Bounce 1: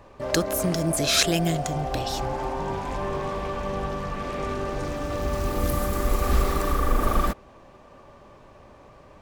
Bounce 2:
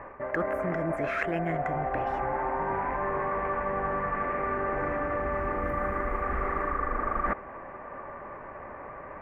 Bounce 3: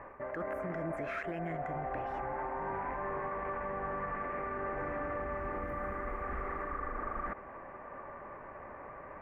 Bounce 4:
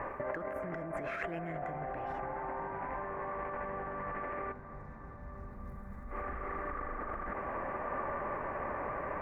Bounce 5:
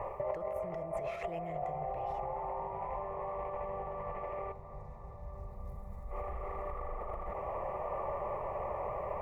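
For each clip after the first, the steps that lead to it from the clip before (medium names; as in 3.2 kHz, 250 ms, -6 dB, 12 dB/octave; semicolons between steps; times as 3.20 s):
FFT filter 120 Hz 0 dB, 2 kHz +14 dB, 3.9 kHz -25 dB; reverse; compression 6:1, threshold -27 dBFS, peak gain reduction 16 dB; reverse
peak limiter -23.5 dBFS, peak gain reduction 10 dB; trim -5.5 dB
compressor with a negative ratio -43 dBFS, ratio -1; time-frequency box 4.52–6.11 s, 240–3500 Hz -16 dB; bucket-brigade echo 315 ms, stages 4096, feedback 81%, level -16 dB; trim +4.5 dB
static phaser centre 650 Hz, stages 4; trim +3 dB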